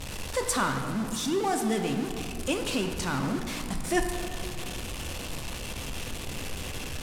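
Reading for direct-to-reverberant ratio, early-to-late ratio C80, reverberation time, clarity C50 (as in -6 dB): 4.0 dB, 7.0 dB, 2.4 s, 6.0 dB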